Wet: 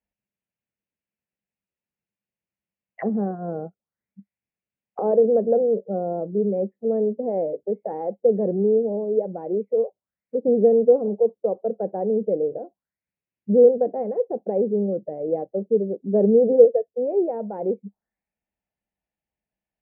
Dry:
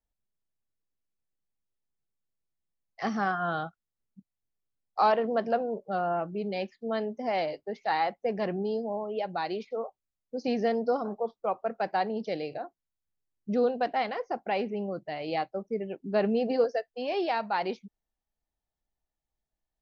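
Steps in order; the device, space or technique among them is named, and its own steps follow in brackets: envelope filter bass rig (touch-sensitive low-pass 460–2800 Hz down, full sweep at -34 dBFS; cabinet simulation 66–2300 Hz, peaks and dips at 200 Hz +9 dB, 550 Hz +4 dB, 1.2 kHz -7 dB)

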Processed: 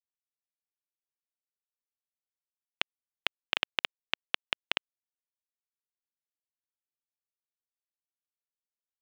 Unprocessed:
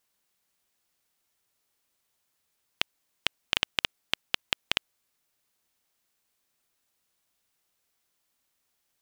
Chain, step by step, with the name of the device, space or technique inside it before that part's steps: phone line with mismatched companding (band-pass 320–3300 Hz; companding laws mixed up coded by A)

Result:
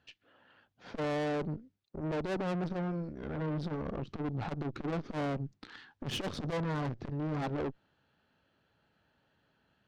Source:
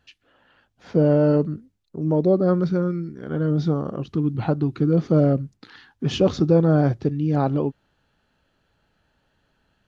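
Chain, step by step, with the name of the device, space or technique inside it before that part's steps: valve radio (band-pass 88–4900 Hz; valve stage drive 31 dB, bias 0.75; transformer saturation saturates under 120 Hz)

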